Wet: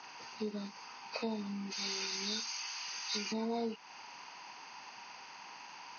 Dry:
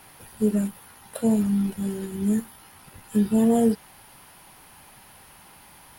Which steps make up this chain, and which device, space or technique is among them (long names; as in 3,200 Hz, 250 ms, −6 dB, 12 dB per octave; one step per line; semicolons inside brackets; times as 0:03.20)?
0:01.72–0:03.32: spectral tilt +4 dB per octave
hearing aid with frequency lowering (hearing-aid frequency compression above 1,000 Hz 1.5 to 1; downward compressor 3 to 1, threshold −30 dBFS, peak gain reduction 11 dB; loudspeaker in its box 330–6,700 Hz, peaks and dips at 360 Hz −3 dB, 570 Hz −6 dB, 960 Hz +8 dB, 2,600 Hz +10 dB, 5,200 Hz −5 dB)
level −1.5 dB